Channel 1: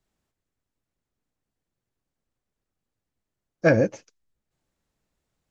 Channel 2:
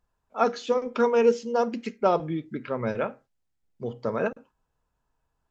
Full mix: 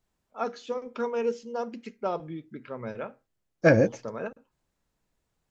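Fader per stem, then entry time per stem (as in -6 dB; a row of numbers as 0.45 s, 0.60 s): -0.5 dB, -8.0 dB; 0.00 s, 0.00 s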